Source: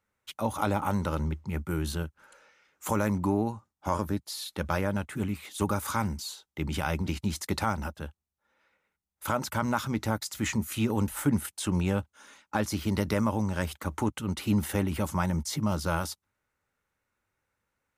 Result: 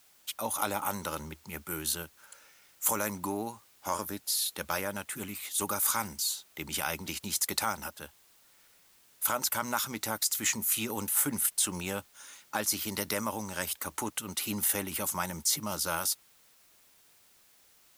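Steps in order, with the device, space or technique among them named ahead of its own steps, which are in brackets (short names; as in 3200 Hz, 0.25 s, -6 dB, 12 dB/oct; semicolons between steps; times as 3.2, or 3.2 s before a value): turntable without a phono preamp (RIAA curve recording; white noise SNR 28 dB); gain -2.5 dB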